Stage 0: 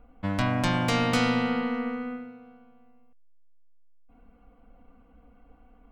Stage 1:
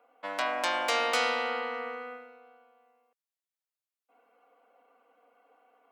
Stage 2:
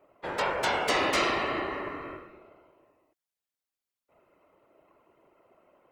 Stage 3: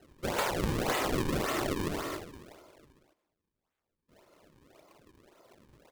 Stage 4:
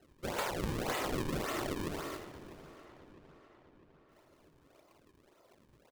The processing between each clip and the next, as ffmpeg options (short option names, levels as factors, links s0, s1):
-af "highpass=f=450:w=0.5412,highpass=f=450:w=1.3066"
-af "afreqshift=-130,afftfilt=real='hypot(re,im)*cos(2*PI*random(0))':imag='hypot(re,im)*sin(2*PI*random(1))':win_size=512:overlap=0.75,volume=2.37"
-af "aecho=1:1:214:0.133,acrusher=samples=37:mix=1:aa=0.000001:lfo=1:lforange=59.2:lforate=1.8,acompressor=threshold=0.0282:ratio=6,volume=1.5"
-filter_complex "[0:a]asplit=2[s0][s1];[s1]adelay=653,lowpass=f=4400:p=1,volume=0.158,asplit=2[s2][s3];[s3]adelay=653,lowpass=f=4400:p=1,volume=0.55,asplit=2[s4][s5];[s5]adelay=653,lowpass=f=4400:p=1,volume=0.55,asplit=2[s6][s7];[s7]adelay=653,lowpass=f=4400:p=1,volume=0.55,asplit=2[s8][s9];[s9]adelay=653,lowpass=f=4400:p=1,volume=0.55[s10];[s0][s2][s4][s6][s8][s10]amix=inputs=6:normalize=0,volume=0.562"